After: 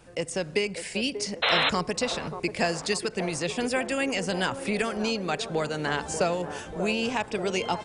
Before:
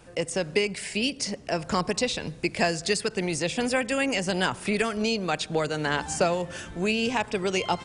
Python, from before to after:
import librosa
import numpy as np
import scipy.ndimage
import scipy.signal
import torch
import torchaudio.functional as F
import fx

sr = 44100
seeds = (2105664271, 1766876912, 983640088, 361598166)

p1 = fx.spec_paint(x, sr, seeds[0], shape='noise', start_s=1.42, length_s=0.28, low_hz=430.0, high_hz=4200.0, level_db=-21.0)
p2 = p1 + fx.echo_wet_bandpass(p1, sr, ms=587, feedback_pct=60, hz=570.0, wet_db=-8.5, dry=0)
y = F.gain(torch.from_numpy(p2), -2.0).numpy()